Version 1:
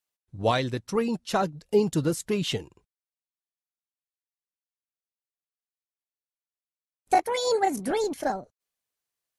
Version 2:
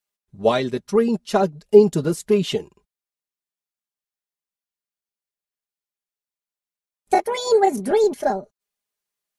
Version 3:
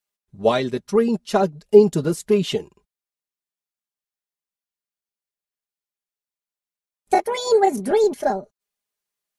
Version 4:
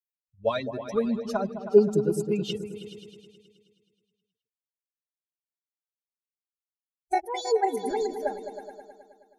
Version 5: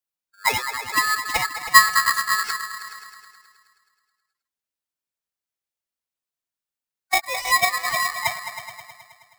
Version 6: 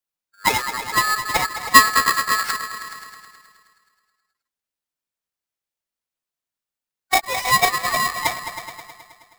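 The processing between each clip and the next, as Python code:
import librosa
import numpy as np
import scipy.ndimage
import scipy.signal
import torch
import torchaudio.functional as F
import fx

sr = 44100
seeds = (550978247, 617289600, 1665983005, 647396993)

y1 = x + 0.61 * np.pad(x, (int(4.9 * sr / 1000.0), 0))[:len(x)]
y1 = fx.dynamic_eq(y1, sr, hz=420.0, q=0.73, threshold_db=-34.0, ratio=4.0, max_db=7)
y2 = y1
y3 = fx.bin_expand(y2, sr, power=2.0)
y3 = fx.echo_opening(y3, sr, ms=106, hz=200, octaves=2, feedback_pct=70, wet_db=-6)
y3 = F.gain(torch.from_numpy(y3), -4.5).numpy()
y4 = y3 * np.sign(np.sin(2.0 * np.pi * 1500.0 * np.arange(len(y3)) / sr))
y4 = F.gain(torch.from_numpy(y4), 4.5).numpy()
y5 = fx.halfwave_hold(y4, sr)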